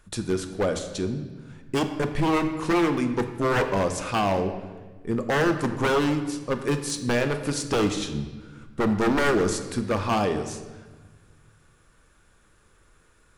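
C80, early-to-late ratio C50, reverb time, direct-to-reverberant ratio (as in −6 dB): 10.5 dB, 9.5 dB, 1.3 s, 7.0 dB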